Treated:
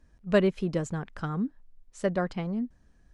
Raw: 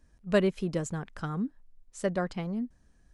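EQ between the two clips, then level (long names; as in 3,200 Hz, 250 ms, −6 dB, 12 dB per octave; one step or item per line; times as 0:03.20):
high-shelf EQ 8,000 Hz −12 dB
+2.0 dB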